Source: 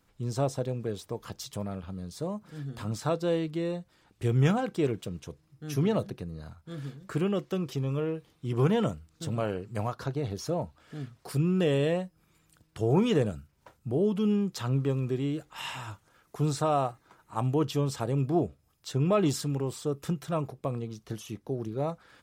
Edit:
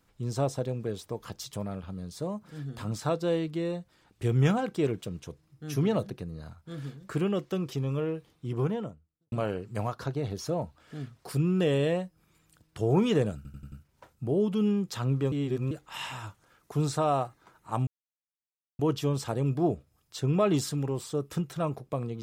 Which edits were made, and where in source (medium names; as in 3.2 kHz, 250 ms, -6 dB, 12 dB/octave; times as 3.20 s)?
8.17–9.32 s: studio fade out
13.36 s: stutter 0.09 s, 5 plays
14.96–15.35 s: reverse
17.51 s: insert silence 0.92 s